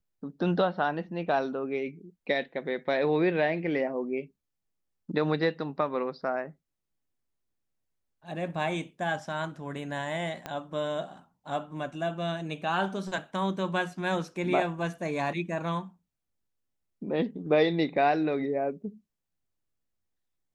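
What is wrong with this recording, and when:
10.46 pop -20 dBFS

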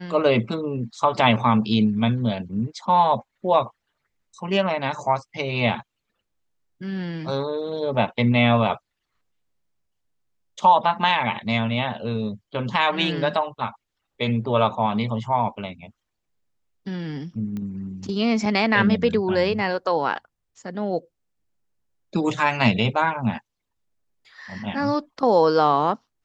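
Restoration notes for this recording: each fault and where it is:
17.57 pop -21 dBFS

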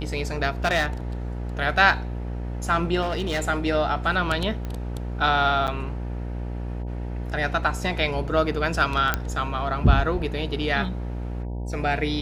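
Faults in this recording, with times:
buzz 60 Hz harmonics 16 -30 dBFS
0.65–0.86 clipped -16.5 dBFS
3.01–3.44 clipped -21 dBFS
4.65 pop -20 dBFS
5.67–5.68 gap 8.3 ms
9.14 pop -7 dBFS

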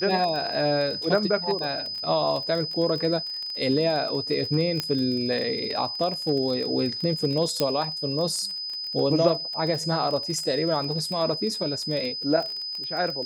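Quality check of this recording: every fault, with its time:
crackle 25/s -29 dBFS
tone 5000 Hz -30 dBFS
4.8 pop -11 dBFS
7.6 pop -9 dBFS

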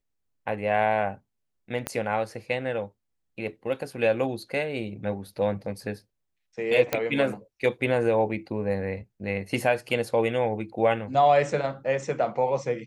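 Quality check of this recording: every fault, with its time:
1.87 pop -13 dBFS
6.93 pop -9 dBFS

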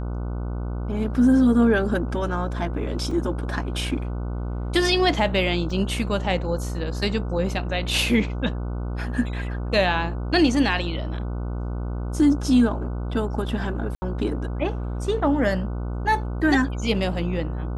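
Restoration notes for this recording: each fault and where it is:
buzz 60 Hz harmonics 25 -28 dBFS
3.11 gap 3.4 ms
5.7 gap 3.3 ms
13.95–14.02 gap 70 ms

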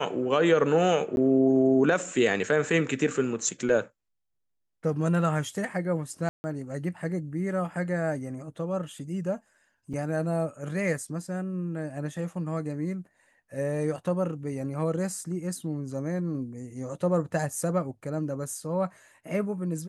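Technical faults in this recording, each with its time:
1.16–1.17 gap 11 ms
6.29–6.44 gap 0.15 s
9.93–9.94 gap 5.5 ms

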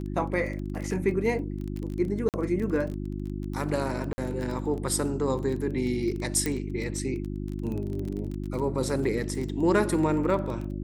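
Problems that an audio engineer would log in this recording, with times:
crackle 19/s -32 dBFS
hum 50 Hz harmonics 7 -33 dBFS
2.29–2.34 gap 48 ms
4.13–4.18 gap 50 ms
6.46 pop -13 dBFS

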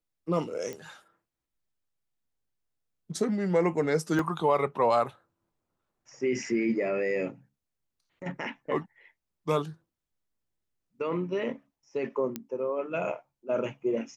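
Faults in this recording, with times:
0.73 pop -24 dBFS
4.19 gap 2.1 ms
12.36 pop -18 dBFS

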